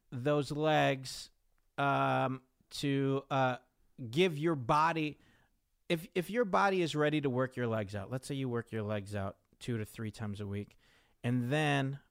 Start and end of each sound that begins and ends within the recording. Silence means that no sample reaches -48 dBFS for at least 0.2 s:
1.78–2.38 s
2.71–3.58 s
3.99–5.13 s
5.90–9.31 s
9.61–10.72 s

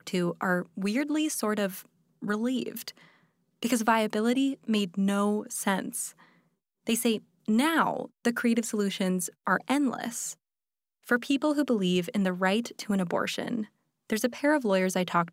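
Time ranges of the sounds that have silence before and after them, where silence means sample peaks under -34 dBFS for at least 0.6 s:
3.63–6.08 s
6.87–10.32 s

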